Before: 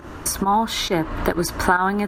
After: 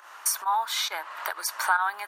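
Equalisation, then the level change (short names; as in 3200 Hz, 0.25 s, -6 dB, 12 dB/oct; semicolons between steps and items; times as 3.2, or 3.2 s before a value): HPF 830 Hz 24 dB/oct; high shelf 10000 Hz +6 dB; -4.0 dB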